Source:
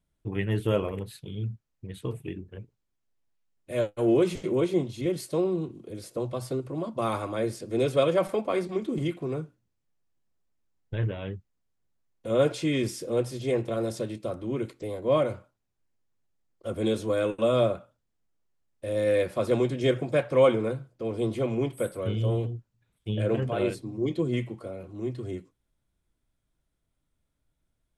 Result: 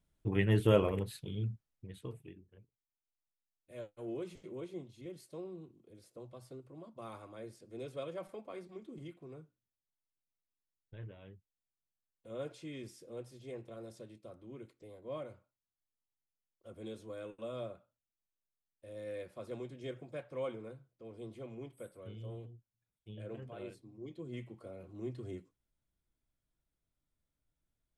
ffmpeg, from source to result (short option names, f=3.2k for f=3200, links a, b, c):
-af "volume=9dB,afade=t=out:st=0.95:d=0.94:silence=0.398107,afade=t=out:st=1.89:d=0.51:silence=0.316228,afade=t=in:st=24.2:d=0.68:silence=0.316228"